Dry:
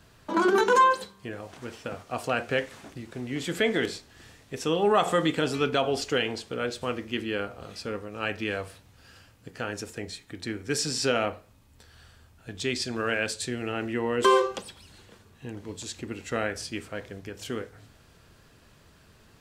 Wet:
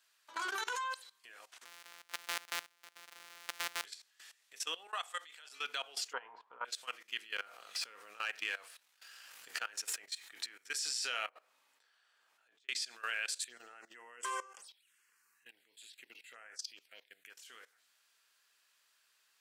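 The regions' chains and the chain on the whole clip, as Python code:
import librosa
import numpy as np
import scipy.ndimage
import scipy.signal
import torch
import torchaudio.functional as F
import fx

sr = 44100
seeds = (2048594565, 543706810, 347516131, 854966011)

y = fx.chain(x, sr, fx.sample_sort(block=256),
    fx.high_shelf(hz=5400.0, db=-8.0),
    fx.band_squash(depth_pct=40), at=(1.65, 3.85))
y = fx.chain(y, sr, fx.highpass(hz=540.0, slope=12),
    fx.level_steps(step_db=12), at=(4.87, 5.52))
y = fx.chain(y, sr, fx.lowpass_res(hz=980.0, q=9.5),
    fx.peak_eq(hz=63.0, db=12.5, octaves=1.6), at=(6.13, 6.65))
y = fx.chain(y, sr, fx.leveller(passes=1),
    fx.high_shelf(hz=2500.0, db=-4.5),
    fx.pre_swell(db_per_s=35.0), at=(7.36, 10.55))
y = fx.chain(y, sr, fx.highpass(hz=430.0, slope=12),
    fx.over_compress(threshold_db=-49.0, ratio=-1.0),
    fx.tilt_eq(slope=-4.5), at=(11.29, 12.69))
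y = fx.chain(y, sr, fx.highpass(hz=56.0, slope=24),
    fx.env_phaser(low_hz=550.0, high_hz=3900.0, full_db=-25.5),
    fx.clip_hard(threshold_db=-12.5), at=(13.43, 17.3))
y = scipy.signal.sosfilt(scipy.signal.butter(2, 1500.0, 'highpass', fs=sr, output='sos'), y)
y = fx.high_shelf(y, sr, hz=5900.0, db=5.0)
y = fx.level_steps(y, sr, step_db=18)
y = F.gain(torch.from_numpy(y), -1.5).numpy()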